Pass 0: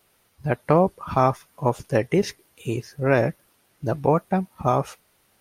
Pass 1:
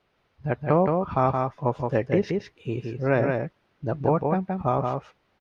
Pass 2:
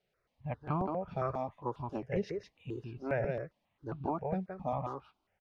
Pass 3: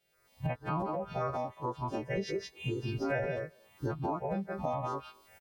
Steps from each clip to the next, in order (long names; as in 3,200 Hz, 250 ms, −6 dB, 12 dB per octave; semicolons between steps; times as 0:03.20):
high-frequency loss of the air 220 metres; single-tap delay 171 ms −4 dB; level −2.5 dB
step-sequenced phaser 7.4 Hz 290–1,900 Hz; level −8.5 dB
every partial snapped to a pitch grid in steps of 2 semitones; camcorder AGC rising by 36 dB per second; far-end echo of a speakerphone 230 ms, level −26 dB